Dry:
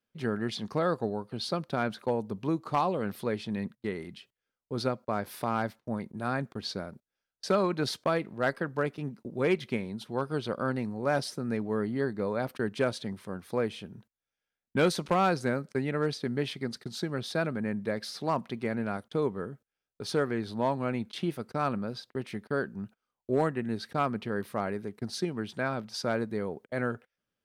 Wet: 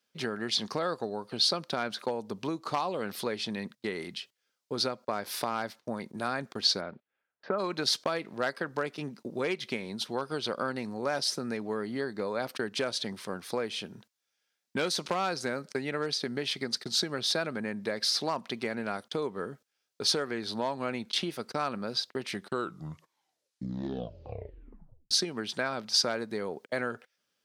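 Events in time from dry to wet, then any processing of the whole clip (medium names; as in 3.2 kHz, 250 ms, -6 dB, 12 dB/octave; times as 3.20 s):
6.80–7.58 s: low-pass 3.7 kHz -> 1.6 kHz 24 dB/octave
22.25 s: tape stop 2.86 s
whole clip: compression, threshold -32 dBFS; high-pass 370 Hz 6 dB/octave; peaking EQ 5.1 kHz +8 dB 1.4 oct; trim +6 dB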